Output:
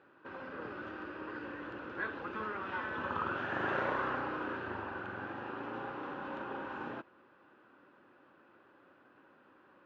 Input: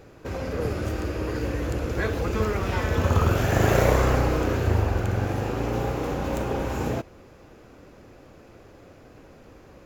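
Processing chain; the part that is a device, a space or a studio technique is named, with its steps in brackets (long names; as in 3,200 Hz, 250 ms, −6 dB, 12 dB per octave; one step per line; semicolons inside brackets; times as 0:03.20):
phone earpiece (loudspeaker in its box 340–3,000 Hz, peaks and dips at 460 Hz −10 dB, 680 Hz −9 dB, 1,000 Hz +3 dB, 1,500 Hz +6 dB, 2,200 Hz −9 dB)
level −8 dB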